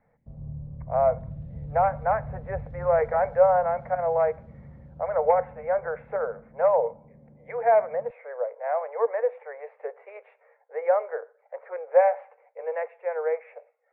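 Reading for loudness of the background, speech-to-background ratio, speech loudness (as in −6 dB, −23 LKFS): −42.0 LKFS, 16.0 dB, −26.0 LKFS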